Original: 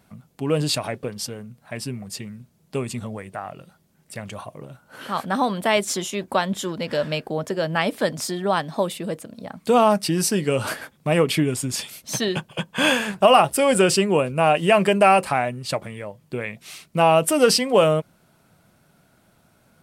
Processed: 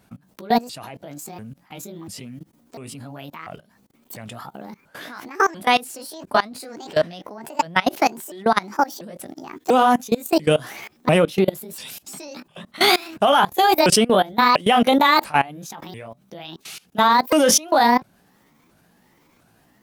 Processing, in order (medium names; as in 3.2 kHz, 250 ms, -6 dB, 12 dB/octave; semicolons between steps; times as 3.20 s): sawtooth pitch modulation +9 st, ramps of 693 ms; level held to a coarse grid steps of 22 dB; trim +7.5 dB